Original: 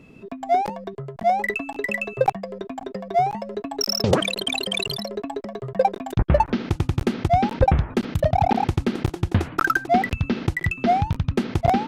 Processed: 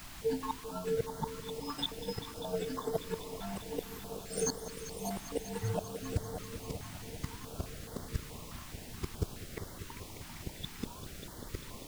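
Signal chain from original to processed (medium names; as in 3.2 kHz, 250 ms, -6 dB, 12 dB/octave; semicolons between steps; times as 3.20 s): frequency axis rescaled in octaves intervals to 128%; compression 2.5:1, threshold -29 dBFS, peak gain reduction 9.5 dB; hum notches 50/100 Hz; feedback comb 150 Hz, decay 0.37 s, harmonics odd, mix 80%; expander -41 dBFS; dynamic bell 5.6 kHz, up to -5 dB, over -58 dBFS, Q 0.86; inverted gate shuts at -38 dBFS, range -30 dB; multi-head delay 197 ms, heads all three, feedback 72%, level -16 dB; added noise pink -65 dBFS; step-sequenced notch 4.7 Hz 460–2500 Hz; trim +18 dB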